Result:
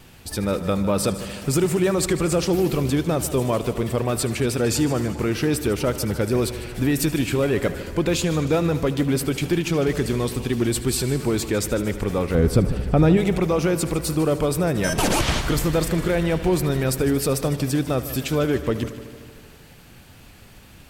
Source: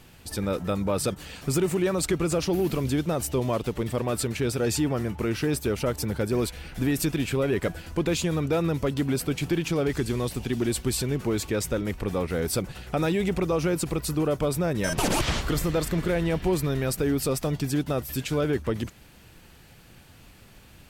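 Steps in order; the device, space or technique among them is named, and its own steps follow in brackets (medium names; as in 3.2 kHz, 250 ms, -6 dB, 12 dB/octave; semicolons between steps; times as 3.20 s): 12.35–13.17 s: tilt EQ -3 dB/octave; multi-head tape echo (multi-head delay 76 ms, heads first and second, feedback 66%, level -17 dB; wow and flutter 23 cents); trim +4 dB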